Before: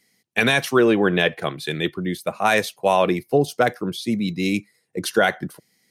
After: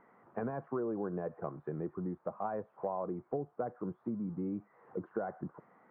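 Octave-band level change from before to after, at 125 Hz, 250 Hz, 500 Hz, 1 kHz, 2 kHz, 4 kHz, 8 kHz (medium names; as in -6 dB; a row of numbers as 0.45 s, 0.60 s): -15.0 dB, -15.5 dB, -17.0 dB, -18.0 dB, -32.5 dB, under -40 dB, under -40 dB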